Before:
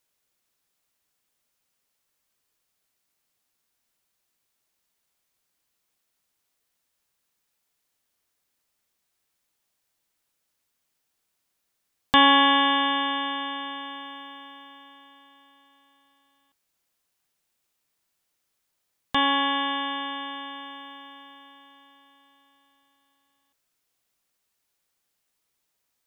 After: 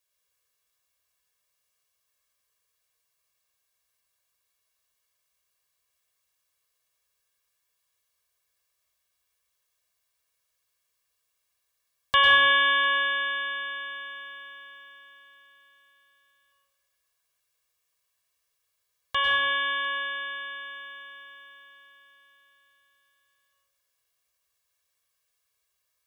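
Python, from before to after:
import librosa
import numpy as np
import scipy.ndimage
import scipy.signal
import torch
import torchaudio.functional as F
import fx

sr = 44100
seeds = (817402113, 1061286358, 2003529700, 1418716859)

y = scipy.signal.sosfilt(scipy.signal.butter(2, 45.0, 'highpass', fs=sr, output='sos'), x)
y = fx.peak_eq(y, sr, hz=250.0, db=-9.0, octaves=2.6)
y = y + 0.89 * np.pad(y, (int(1.8 * sr / 1000.0), 0))[:len(y)]
y = y + 10.0 ** (-23.0 / 20.0) * np.pad(y, (int(701 * sr / 1000.0), 0))[:len(y)]
y = fx.rev_plate(y, sr, seeds[0], rt60_s=1.2, hf_ratio=0.5, predelay_ms=90, drr_db=-1.0)
y = F.gain(torch.from_numpy(y), -5.0).numpy()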